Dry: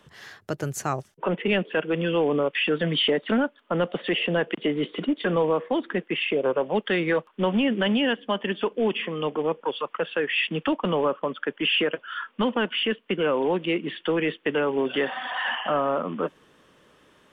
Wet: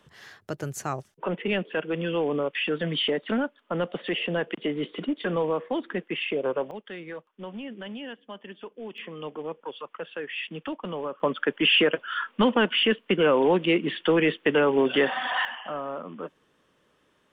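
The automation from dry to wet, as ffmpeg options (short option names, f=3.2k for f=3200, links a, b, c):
-af "asetnsamples=n=441:p=0,asendcmd='6.71 volume volume -15dB;8.98 volume volume -9dB;11.2 volume volume 3dB;15.45 volume volume -9dB',volume=-3.5dB"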